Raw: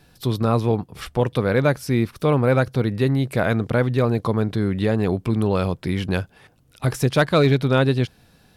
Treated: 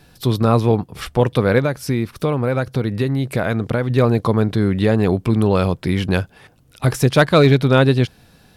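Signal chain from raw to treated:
0:01.58–0:03.90: downward compressor, threshold −20 dBFS, peak gain reduction 7.5 dB
level +4.5 dB

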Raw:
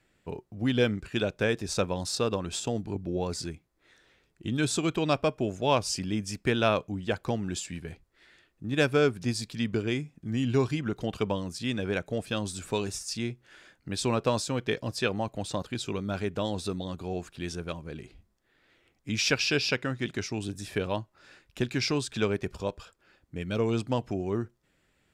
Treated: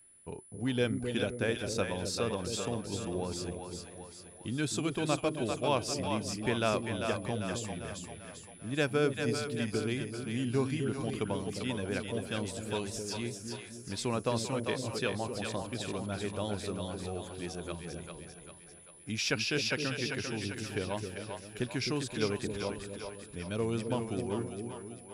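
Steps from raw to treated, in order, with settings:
steady tone 10,000 Hz −52 dBFS
on a send: echo with a time of its own for lows and highs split 510 Hz, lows 261 ms, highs 395 ms, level −5 dB
on the sum: level −5.5 dB

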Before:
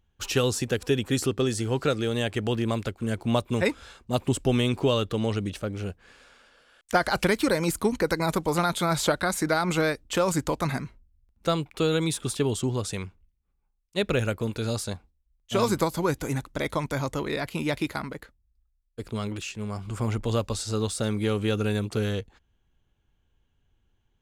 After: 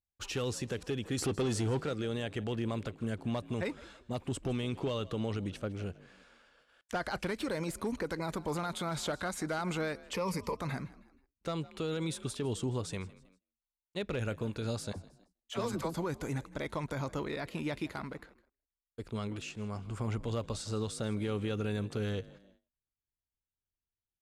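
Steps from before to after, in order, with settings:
asymmetric clip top −17 dBFS, bottom −14 dBFS
0:01.18–0:01.81: leveller curve on the samples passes 2
0:10.14–0:10.57: EQ curve with evenly spaced ripples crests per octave 0.86, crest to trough 14 dB
brickwall limiter −20 dBFS, peak gain reduction 8 dB
0:14.92–0:15.94: all-pass dispersion lows, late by 44 ms, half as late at 500 Hz
echo with shifted repeats 159 ms, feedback 40%, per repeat +45 Hz, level −20 dB
noise gate −59 dBFS, range −22 dB
low-pass filter 12,000 Hz 12 dB per octave
high-shelf EQ 4,900 Hz −5 dB
level −6 dB

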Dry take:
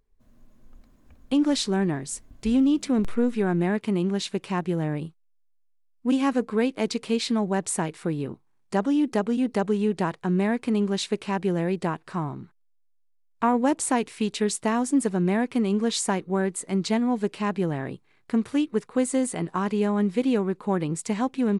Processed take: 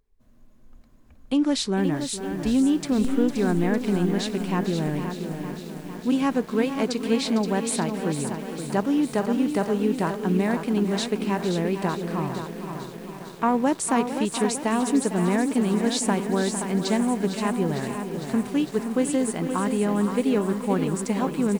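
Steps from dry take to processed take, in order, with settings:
single-tap delay 524 ms −8 dB
feedback echo at a low word length 454 ms, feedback 80%, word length 7 bits, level −11 dB

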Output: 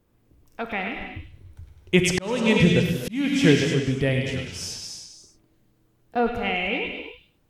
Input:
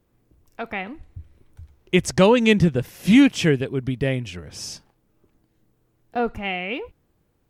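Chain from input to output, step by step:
echo through a band-pass that steps 102 ms, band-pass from 2,900 Hz, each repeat 0.7 octaves, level −2 dB
reverb whose tail is shaped and stops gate 320 ms flat, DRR 4 dB
0:01.96–0:03.44: volume swells 551 ms

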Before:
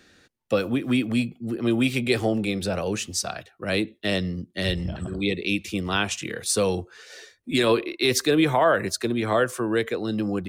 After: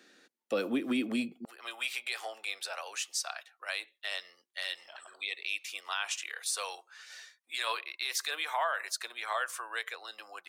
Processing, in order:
high-pass filter 230 Hz 24 dB per octave, from 0:01.45 830 Hz
brickwall limiter −17 dBFS, peak gain reduction 8 dB
level −4.5 dB

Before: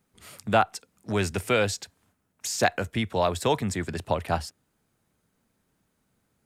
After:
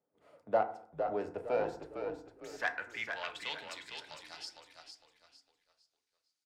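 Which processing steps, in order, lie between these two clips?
phase distortion by the signal itself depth 0.12 ms
band-pass filter sweep 570 Hz → 4,900 Hz, 0:01.34–0:04.08
on a send: echo with shifted repeats 456 ms, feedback 33%, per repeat −44 Hz, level −6.5 dB
on the sum: feedback delay network reverb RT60 0.56 s, low-frequency decay 1.3×, high-frequency decay 0.45×, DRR 6 dB
level −3.5 dB

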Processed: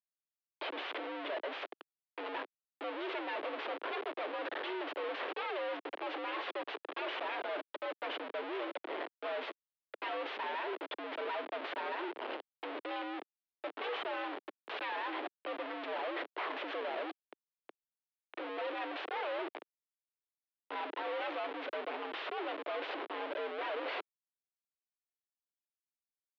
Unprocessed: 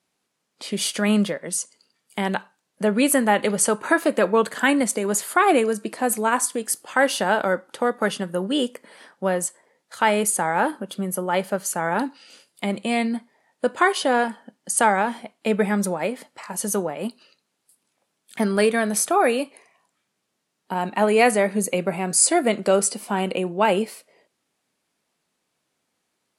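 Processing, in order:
phase distortion by the signal itself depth 0.55 ms
reversed playback
downward compressor 16 to 1, threshold −31 dBFS, peak gain reduction 20 dB
reversed playback
comparator with hysteresis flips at −43 dBFS
single-sideband voice off tune +87 Hz 270–3,400 Hz
level +1.5 dB

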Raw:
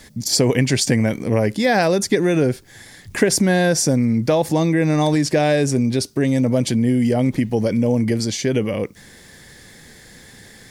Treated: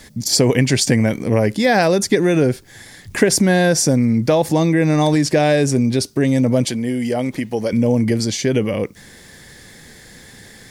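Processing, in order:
0:06.65–0:07.73: low-shelf EQ 240 Hz −12 dB
level +2 dB

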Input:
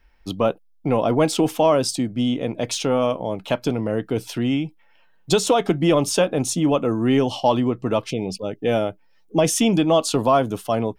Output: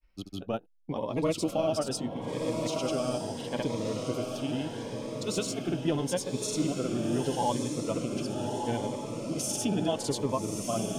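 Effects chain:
granular cloud, pitch spread up and down by 0 semitones
feedback delay with all-pass diffusion 1,219 ms, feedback 52%, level −4 dB
phaser whose notches keep moving one way rising 0.76 Hz
level −8.5 dB

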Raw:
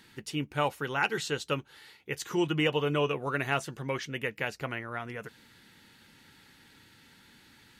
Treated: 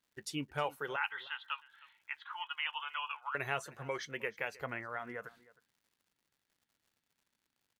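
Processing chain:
noise gate with hold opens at −45 dBFS
noise reduction from a noise print of the clip's start 11 dB
0:00.96–0:03.35: Chebyshev band-pass filter 870–3,400 Hz, order 4
downward compressor 1.5 to 1, threshold −45 dBFS, peak gain reduction 8 dB
surface crackle 180 per second −63 dBFS
single-tap delay 312 ms −21 dB
level +1 dB

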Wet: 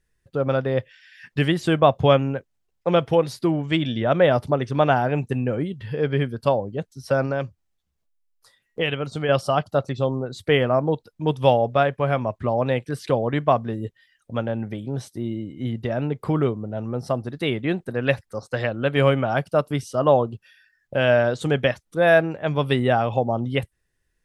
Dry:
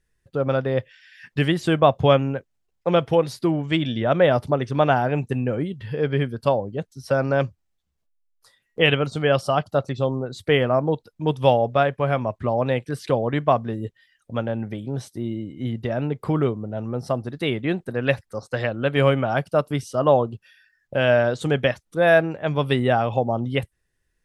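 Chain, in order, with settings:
0:07.25–0:09.29: downward compressor 2 to 1, threshold −25 dBFS, peak gain reduction 7.5 dB

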